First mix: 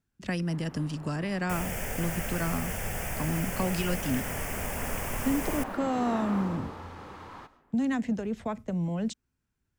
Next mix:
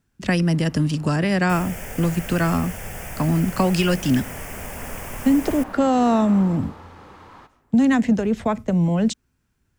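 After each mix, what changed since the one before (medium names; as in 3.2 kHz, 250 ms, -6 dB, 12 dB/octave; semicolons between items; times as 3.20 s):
speech +11.0 dB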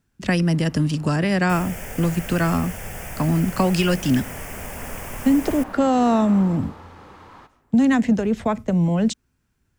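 no change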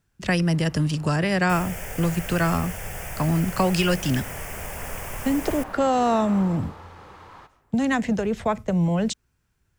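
master: add peaking EQ 250 Hz -7.5 dB 0.71 oct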